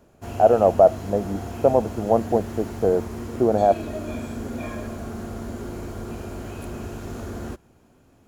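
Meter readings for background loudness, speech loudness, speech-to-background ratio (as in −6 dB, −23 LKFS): −33.5 LKFS, −20.5 LKFS, 13.0 dB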